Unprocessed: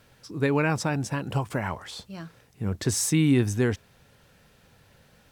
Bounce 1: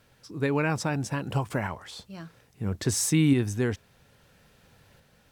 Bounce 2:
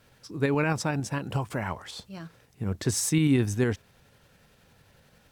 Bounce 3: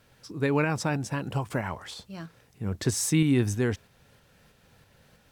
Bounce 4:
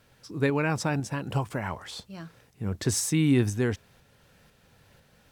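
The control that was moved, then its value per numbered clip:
tremolo, rate: 0.6, 11, 3.1, 2 Hz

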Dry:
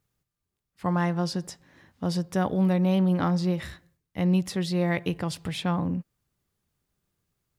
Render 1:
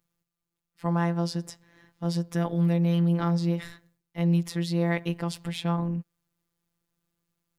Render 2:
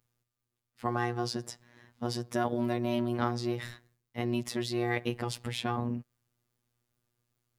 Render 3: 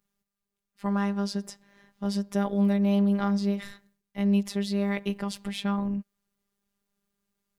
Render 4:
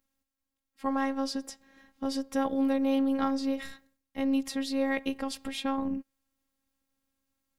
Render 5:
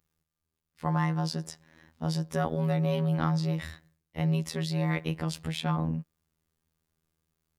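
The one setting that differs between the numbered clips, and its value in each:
robotiser, frequency: 170, 120, 200, 270, 80 Hz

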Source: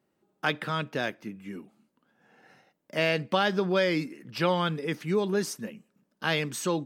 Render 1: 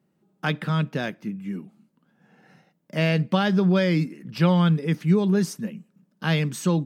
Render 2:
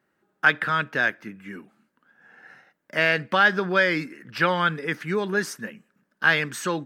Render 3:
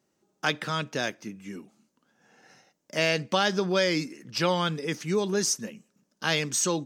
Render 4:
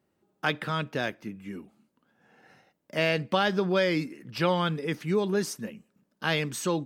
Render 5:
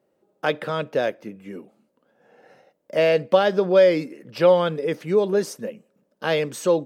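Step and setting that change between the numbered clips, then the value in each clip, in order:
bell, frequency: 170, 1600, 6200, 65, 530 Hz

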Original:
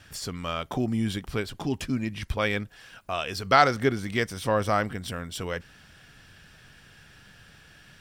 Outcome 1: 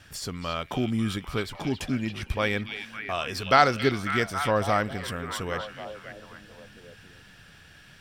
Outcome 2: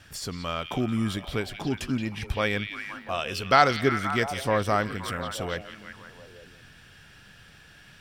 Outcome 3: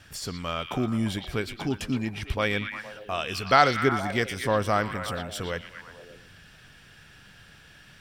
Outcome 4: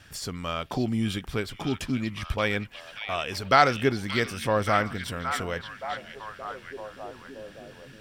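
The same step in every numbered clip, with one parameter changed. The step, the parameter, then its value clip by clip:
delay with a stepping band-pass, time: 0.273, 0.174, 0.117, 0.575 s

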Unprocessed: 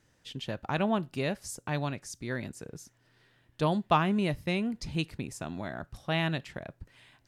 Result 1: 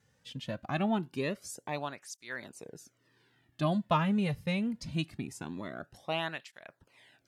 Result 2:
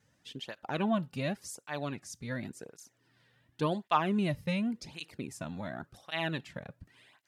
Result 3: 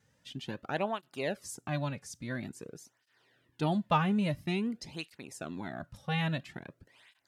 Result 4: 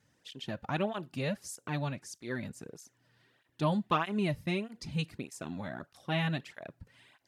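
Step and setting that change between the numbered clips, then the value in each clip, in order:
tape flanging out of phase, nulls at: 0.23, 0.9, 0.49, 1.6 Hz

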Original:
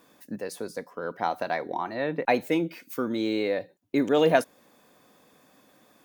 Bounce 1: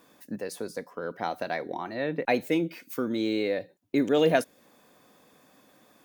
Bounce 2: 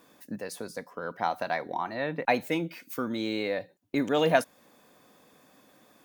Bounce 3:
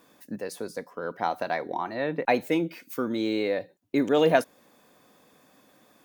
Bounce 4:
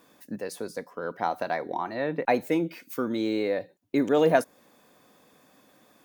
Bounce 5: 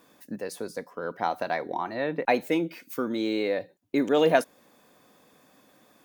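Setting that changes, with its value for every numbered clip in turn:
dynamic EQ, frequency: 980, 380, 8500, 3100, 110 Hz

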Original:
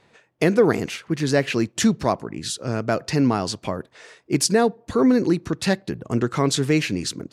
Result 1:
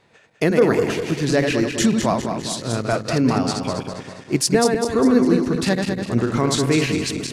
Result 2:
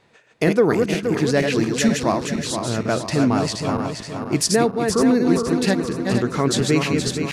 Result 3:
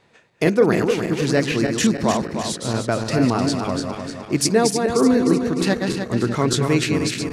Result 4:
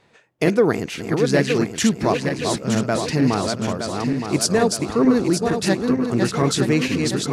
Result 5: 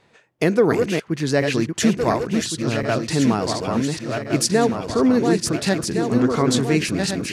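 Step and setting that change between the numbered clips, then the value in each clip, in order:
regenerating reverse delay, time: 0.101, 0.236, 0.152, 0.459, 0.707 s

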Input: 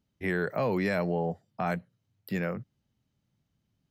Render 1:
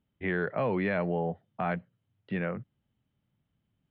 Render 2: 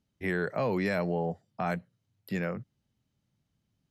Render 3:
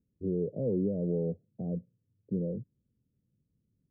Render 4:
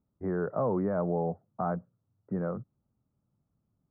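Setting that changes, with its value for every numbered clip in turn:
elliptic low-pass, frequency: 3400, 12000, 500, 1300 Hz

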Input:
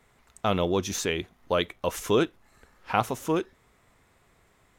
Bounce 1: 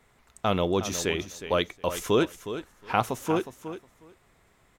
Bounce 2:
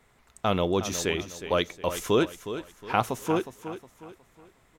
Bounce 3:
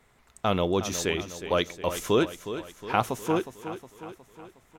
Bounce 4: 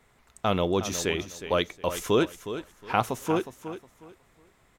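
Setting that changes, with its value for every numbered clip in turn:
feedback echo, feedback: 15, 36, 54, 24%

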